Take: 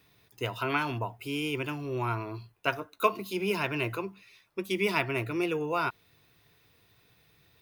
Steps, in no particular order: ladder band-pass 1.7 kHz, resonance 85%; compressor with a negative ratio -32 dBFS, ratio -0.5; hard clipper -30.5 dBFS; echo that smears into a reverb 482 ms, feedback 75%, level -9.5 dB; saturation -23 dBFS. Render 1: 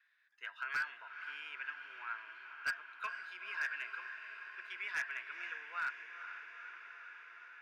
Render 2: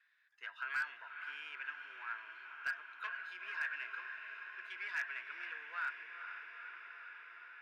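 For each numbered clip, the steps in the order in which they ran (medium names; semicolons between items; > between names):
ladder band-pass > saturation > echo that smears into a reverb > hard clipper > compressor with a negative ratio; echo that smears into a reverb > saturation > ladder band-pass > compressor with a negative ratio > hard clipper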